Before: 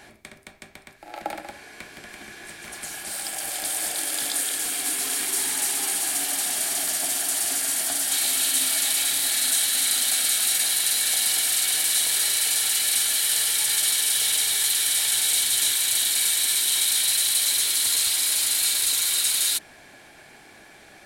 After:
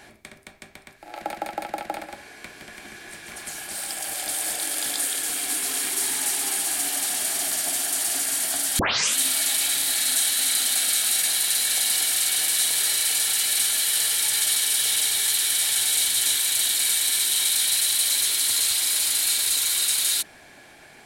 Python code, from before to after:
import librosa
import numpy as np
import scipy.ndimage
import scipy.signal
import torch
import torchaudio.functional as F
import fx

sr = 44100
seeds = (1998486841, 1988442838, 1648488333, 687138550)

y = fx.edit(x, sr, fx.stutter(start_s=1.18, slice_s=0.16, count=5),
    fx.tape_start(start_s=8.15, length_s=0.38), tone=tone)